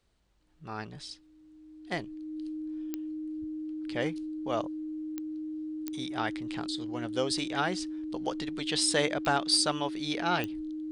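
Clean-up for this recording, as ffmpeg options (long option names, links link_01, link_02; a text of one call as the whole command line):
ffmpeg -i in.wav -af "adeclick=threshold=4,bandreject=frequency=310:width=30" out.wav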